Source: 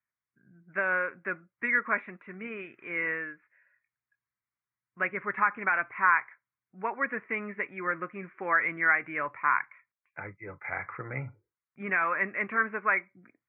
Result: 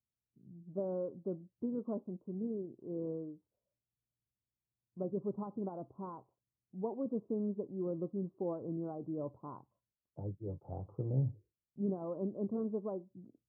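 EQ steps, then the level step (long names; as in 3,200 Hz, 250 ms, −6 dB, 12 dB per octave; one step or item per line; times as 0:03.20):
Gaussian smoothing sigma 17 samples
parametric band 63 Hz +5 dB 1.3 octaves
+5.0 dB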